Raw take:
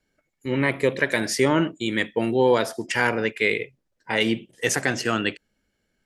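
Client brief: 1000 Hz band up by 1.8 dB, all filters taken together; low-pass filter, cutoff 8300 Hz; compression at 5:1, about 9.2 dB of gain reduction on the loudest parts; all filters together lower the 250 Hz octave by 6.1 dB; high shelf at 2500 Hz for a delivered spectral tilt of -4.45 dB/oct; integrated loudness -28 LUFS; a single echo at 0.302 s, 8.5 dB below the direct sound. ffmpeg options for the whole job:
-af "lowpass=8.3k,equalizer=f=250:t=o:g=-8.5,equalizer=f=1k:t=o:g=4,highshelf=f=2.5k:g=-8,acompressor=threshold=-26dB:ratio=5,aecho=1:1:302:0.376,volume=3dB"

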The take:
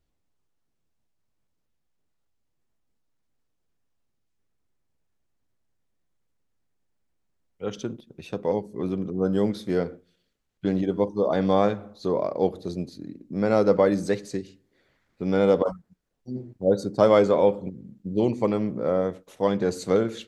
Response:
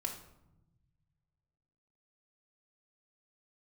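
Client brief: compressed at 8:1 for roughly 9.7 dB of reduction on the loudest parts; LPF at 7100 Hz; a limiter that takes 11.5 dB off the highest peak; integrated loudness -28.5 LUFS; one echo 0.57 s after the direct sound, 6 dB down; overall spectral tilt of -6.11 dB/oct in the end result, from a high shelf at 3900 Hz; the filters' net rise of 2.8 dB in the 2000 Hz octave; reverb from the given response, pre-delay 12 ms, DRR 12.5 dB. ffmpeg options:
-filter_complex "[0:a]lowpass=7.1k,equalizer=f=2k:t=o:g=5,highshelf=f=3.9k:g=-6,acompressor=threshold=-23dB:ratio=8,alimiter=limit=-22.5dB:level=0:latency=1,aecho=1:1:570:0.501,asplit=2[a][b];[1:a]atrim=start_sample=2205,adelay=12[c];[b][c]afir=irnorm=-1:irlink=0,volume=-13dB[d];[a][d]amix=inputs=2:normalize=0,volume=5dB"

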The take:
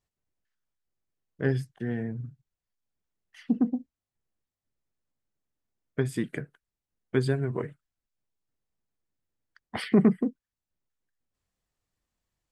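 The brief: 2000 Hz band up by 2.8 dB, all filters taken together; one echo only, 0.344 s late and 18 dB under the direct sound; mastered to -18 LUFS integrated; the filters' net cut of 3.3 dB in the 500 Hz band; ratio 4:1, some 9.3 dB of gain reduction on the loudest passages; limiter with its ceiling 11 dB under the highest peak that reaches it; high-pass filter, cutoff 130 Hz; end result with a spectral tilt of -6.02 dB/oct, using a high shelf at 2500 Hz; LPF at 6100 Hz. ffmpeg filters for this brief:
-af "highpass=130,lowpass=6.1k,equalizer=f=500:t=o:g=-4.5,equalizer=f=2k:t=o:g=5,highshelf=f=2.5k:g=-3,acompressor=threshold=-28dB:ratio=4,alimiter=level_in=3.5dB:limit=-24dB:level=0:latency=1,volume=-3.5dB,aecho=1:1:344:0.126,volume=21.5dB"

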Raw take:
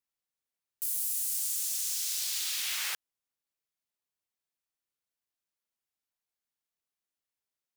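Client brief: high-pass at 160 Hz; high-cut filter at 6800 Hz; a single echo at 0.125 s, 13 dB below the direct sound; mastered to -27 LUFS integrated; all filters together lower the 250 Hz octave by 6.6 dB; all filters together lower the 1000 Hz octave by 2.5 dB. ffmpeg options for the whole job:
-af "highpass=160,lowpass=6.8k,equalizer=f=250:t=o:g=-9,equalizer=f=1k:t=o:g=-3,aecho=1:1:125:0.224,volume=8.5dB"

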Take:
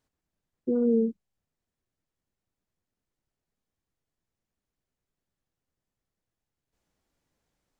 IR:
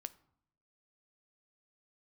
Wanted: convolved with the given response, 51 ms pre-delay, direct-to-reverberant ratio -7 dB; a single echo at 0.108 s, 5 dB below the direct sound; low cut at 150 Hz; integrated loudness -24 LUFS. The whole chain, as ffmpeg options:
-filter_complex "[0:a]highpass=150,aecho=1:1:108:0.562,asplit=2[a][b];[1:a]atrim=start_sample=2205,adelay=51[c];[b][c]afir=irnorm=-1:irlink=0,volume=11dB[d];[a][d]amix=inputs=2:normalize=0,volume=-6dB"

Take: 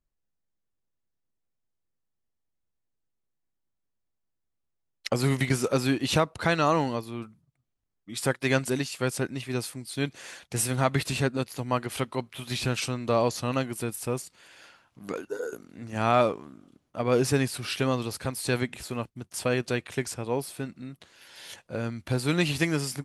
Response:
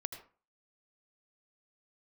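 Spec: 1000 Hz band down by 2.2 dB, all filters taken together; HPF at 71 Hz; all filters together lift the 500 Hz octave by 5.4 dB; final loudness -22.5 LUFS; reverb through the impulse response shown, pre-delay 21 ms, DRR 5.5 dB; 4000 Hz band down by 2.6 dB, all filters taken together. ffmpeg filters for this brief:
-filter_complex "[0:a]highpass=71,equalizer=f=500:t=o:g=8,equalizer=f=1k:t=o:g=-6,equalizer=f=4k:t=o:g=-3,asplit=2[a][b];[1:a]atrim=start_sample=2205,adelay=21[c];[b][c]afir=irnorm=-1:irlink=0,volume=-4.5dB[d];[a][d]amix=inputs=2:normalize=0,volume=2.5dB"

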